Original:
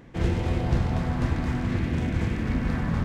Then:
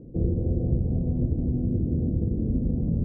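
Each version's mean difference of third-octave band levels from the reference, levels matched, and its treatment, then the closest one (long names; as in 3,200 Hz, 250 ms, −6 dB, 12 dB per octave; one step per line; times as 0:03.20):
14.5 dB: Butterworth low-pass 520 Hz 36 dB per octave
downward compressor 2 to 1, threshold −30 dBFS, peak gain reduction 7 dB
level +5.5 dB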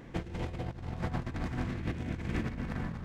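4.0 dB: mains-hum notches 50/100/150/200/250 Hz
compressor whose output falls as the input rises −30 dBFS, ratio −0.5
level −4.5 dB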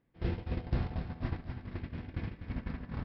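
5.5 dB: noise gate −23 dBFS, range −19 dB
Butterworth low-pass 5,300 Hz 96 dB per octave
repeating echo 247 ms, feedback 53%, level −9.5 dB
level −8 dB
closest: second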